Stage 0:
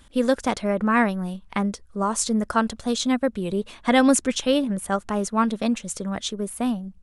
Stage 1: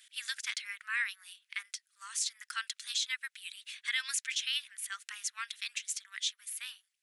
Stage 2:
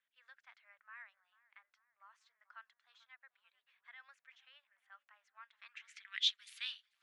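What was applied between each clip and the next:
steep high-pass 1.8 kHz 36 dB/octave; dynamic bell 9 kHz, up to -5 dB, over -46 dBFS, Q 1.6; peak limiter -21.5 dBFS, peak gain reduction 9 dB
low-pass sweep 650 Hz -> 3.9 kHz, 5.40–6.29 s; tape echo 441 ms, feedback 77%, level -18 dB, low-pass 1.4 kHz; trim -4 dB

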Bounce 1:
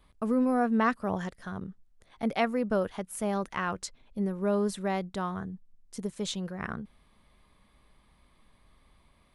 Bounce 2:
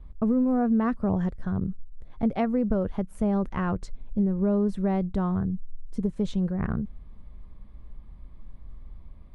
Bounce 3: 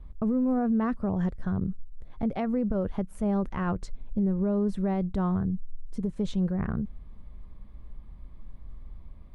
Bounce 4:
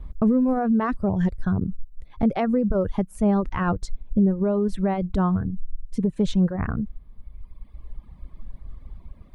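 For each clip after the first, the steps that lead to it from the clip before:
tilt EQ -4.5 dB/octave; compression 4:1, threshold -21 dBFS, peak gain reduction 7 dB
peak limiter -20 dBFS, peak gain reduction 6.5 dB
reverb removal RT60 1.9 s; trim +8 dB

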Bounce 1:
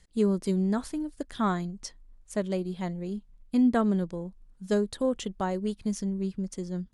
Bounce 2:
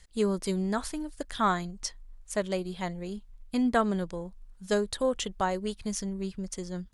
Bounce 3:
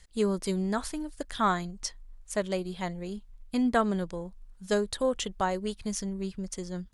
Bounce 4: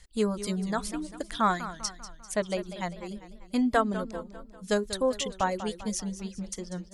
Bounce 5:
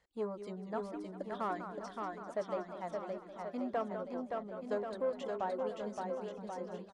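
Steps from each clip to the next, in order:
peaking EQ 230 Hz -10 dB 2.2 oct; trim +5.5 dB
no audible change
reverb removal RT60 1.3 s; band-stop 390 Hz, Q 12; modulated delay 197 ms, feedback 50%, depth 148 cents, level -13 dB; trim +1.5 dB
saturation -22 dBFS, distortion -12 dB; band-pass filter 610 Hz, Q 0.99; on a send: bouncing-ball echo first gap 570 ms, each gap 0.9×, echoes 5; on the sum: trim -4.5 dB

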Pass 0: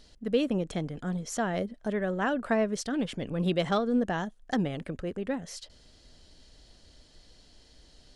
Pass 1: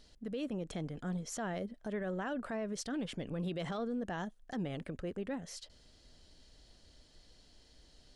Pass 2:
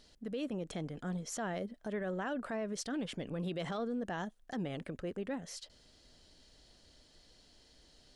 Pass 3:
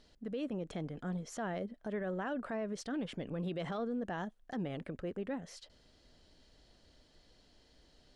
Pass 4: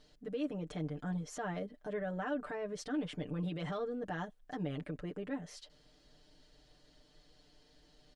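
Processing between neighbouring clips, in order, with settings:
peak limiter -25.5 dBFS, peak gain reduction 11 dB; trim -5 dB
bass shelf 110 Hz -6.5 dB; trim +1 dB
treble shelf 4.4 kHz -10 dB
comb 6.7 ms, depth 90%; trim -2.5 dB

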